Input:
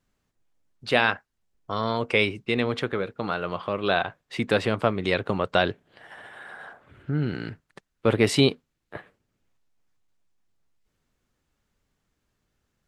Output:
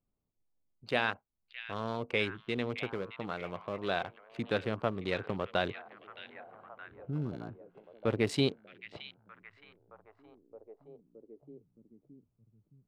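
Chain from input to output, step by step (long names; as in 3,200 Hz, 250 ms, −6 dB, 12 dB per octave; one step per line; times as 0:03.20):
adaptive Wiener filter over 25 samples
echo through a band-pass that steps 619 ms, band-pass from 2,500 Hz, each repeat −0.7 octaves, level −9 dB
level −9 dB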